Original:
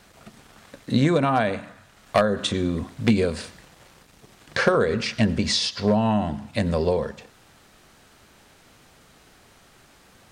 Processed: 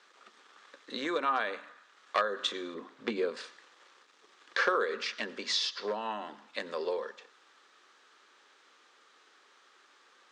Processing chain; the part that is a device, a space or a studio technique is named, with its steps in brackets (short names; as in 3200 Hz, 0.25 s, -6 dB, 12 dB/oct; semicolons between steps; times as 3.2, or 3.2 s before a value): 2.74–3.37 tilt -2.5 dB/oct; phone speaker on a table (speaker cabinet 360–7000 Hz, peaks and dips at 670 Hz -9 dB, 1200 Hz +7 dB, 1700 Hz +4 dB, 3500 Hz +4 dB); gain -8.5 dB